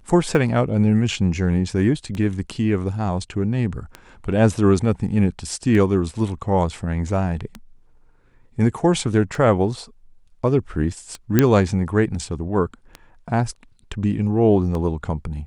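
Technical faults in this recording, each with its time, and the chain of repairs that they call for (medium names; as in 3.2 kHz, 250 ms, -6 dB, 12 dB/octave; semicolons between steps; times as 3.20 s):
tick 33 1/3 rpm
11.39 s: pop -1 dBFS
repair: de-click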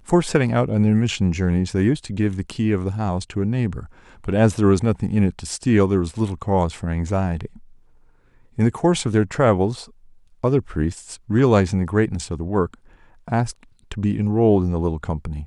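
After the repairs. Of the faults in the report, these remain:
nothing left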